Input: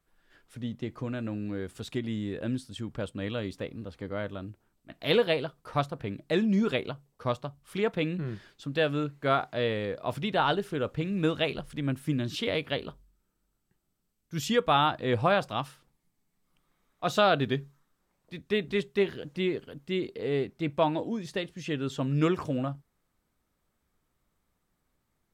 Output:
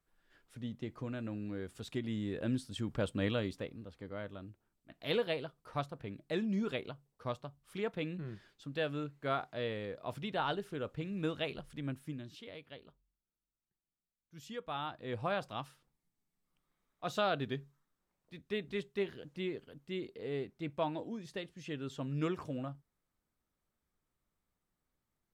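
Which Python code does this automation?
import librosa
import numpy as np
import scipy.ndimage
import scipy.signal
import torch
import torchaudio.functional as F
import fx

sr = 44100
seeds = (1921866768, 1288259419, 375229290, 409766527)

y = fx.gain(x, sr, db=fx.line((1.8, -6.5), (3.24, 1.0), (3.84, -9.0), (11.87, -9.0), (12.45, -20.0), (14.39, -20.0), (15.44, -9.5)))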